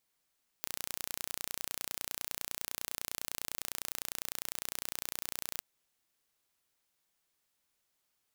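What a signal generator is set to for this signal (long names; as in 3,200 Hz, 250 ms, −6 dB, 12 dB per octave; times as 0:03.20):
impulse train 29.9 per second, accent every 0, −9.5 dBFS 4.96 s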